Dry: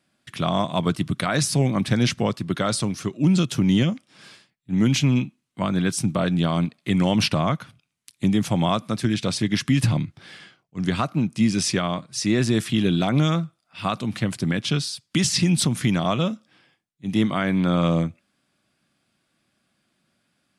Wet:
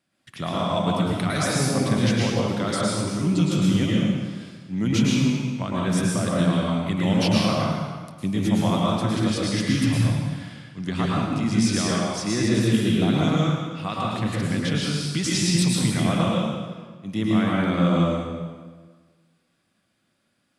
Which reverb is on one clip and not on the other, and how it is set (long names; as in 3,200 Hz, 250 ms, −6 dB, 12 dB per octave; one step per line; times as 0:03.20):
dense smooth reverb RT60 1.5 s, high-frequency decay 0.8×, pre-delay 95 ms, DRR −5 dB
level −6 dB